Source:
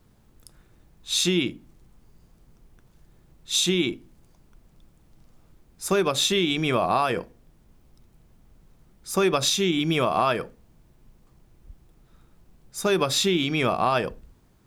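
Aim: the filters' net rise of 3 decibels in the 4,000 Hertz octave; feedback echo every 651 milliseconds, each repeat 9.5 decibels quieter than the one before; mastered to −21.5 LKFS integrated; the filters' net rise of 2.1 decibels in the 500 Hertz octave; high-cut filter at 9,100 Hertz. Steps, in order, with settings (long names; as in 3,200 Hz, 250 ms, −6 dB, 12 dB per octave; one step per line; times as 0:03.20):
low-pass filter 9,100 Hz
parametric band 500 Hz +3 dB
parametric band 4,000 Hz +3.5 dB
repeating echo 651 ms, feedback 33%, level −9.5 dB
level +1 dB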